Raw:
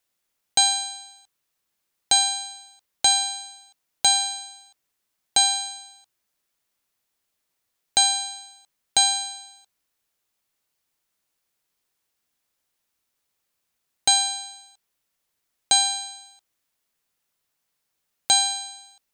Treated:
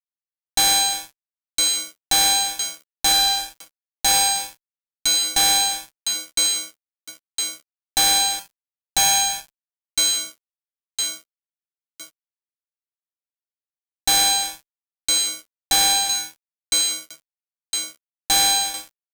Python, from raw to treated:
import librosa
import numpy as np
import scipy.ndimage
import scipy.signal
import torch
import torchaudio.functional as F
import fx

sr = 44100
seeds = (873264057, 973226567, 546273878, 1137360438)

y = fx.echo_wet_highpass(x, sr, ms=1010, feedback_pct=38, hz=3100.0, wet_db=-9.0)
y = fx.fuzz(y, sr, gain_db=32.0, gate_db=-40.0)
y = fx.dynamic_eq(y, sr, hz=500.0, q=6.0, threshold_db=-49.0, ratio=4.0, max_db=6)
y = y * librosa.db_to_amplitude(-2.0)